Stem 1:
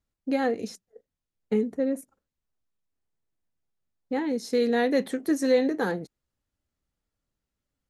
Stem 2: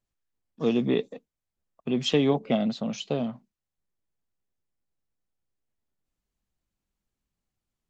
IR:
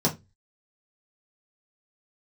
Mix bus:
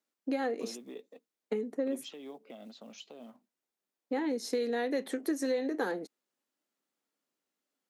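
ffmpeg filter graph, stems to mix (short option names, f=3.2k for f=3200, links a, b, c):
-filter_complex "[0:a]acompressor=threshold=-27dB:ratio=10,volume=0dB[a];[1:a]acompressor=threshold=-37dB:ratio=3,alimiter=level_in=6.5dB:limit=-24dB:level=0:latency=1:release=223,volume=-6.5dB,acrusher=bits=8:mode=log:mix=0:aa=0.000001,volume=-5dB[b];[a][b]amix=inputs=2:normalize=0,highpass=f=250:w=0.5412,highpass=f=250:w=1.3066"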